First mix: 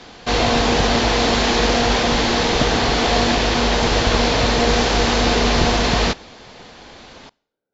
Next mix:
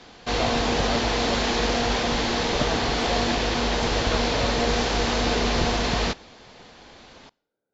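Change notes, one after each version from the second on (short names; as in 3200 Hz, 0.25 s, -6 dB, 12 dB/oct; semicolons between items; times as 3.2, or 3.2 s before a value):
background -6.5 dB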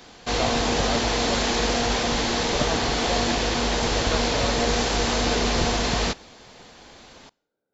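speech: send +8.0 dB; background: remove LPF 5500 Hz 12 dB/oct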